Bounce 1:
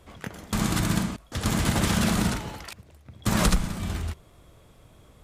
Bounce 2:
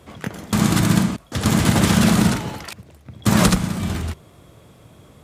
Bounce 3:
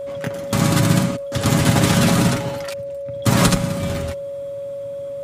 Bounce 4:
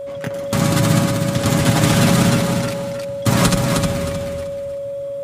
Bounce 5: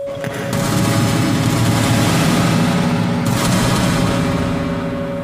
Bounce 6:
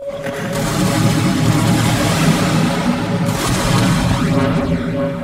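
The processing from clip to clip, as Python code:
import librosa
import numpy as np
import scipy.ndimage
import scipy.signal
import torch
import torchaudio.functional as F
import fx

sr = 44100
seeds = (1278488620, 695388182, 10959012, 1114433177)

y1 = scipy.signal.sosfilt(scipy.signal.butter(2, 110.0, 'highpass', fs=sr, output='sos'), x)
y1 = fx.low_shelf(y1, sr, hz=290.0, db=5.5)
y1 = F.gain(torch.from_numpy(y1), 6.0).numpy()
y2 = y1 + 0.51 * np.pad(y1, (int(7.3 * sr / 1000.0), 0))[:len(y1)]
y2 = y2 + 10.0 ** (-26.0 / 20.0) * np.sin(2.0 * np.pi * 560.0 * np.arange(len(y2)) / sr)
y3 = fx.echo_feedback(y2, sr, ms=311, feedback_pct=29, wet_db=-4.5)
y4 = fx.rev_freeverb(y3, sr, rt60_s=4.0, hf_ratio=0.6, predelay_ms=60, drr_db=-5.5)
y4 = fx.env_flatten(y4, sr, amount_pct=50)
y4 = F.gain(torch.from_numpy(y4), -6.0).numpy()
y5 = fx.chorus_voices(y4, sr, voices=4, hz=0.82, base_ms=23, depth_ms=3.7, mix_pct=70)
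y5 = F.gain(torch.from_numpy(y5), 2.5).numpy()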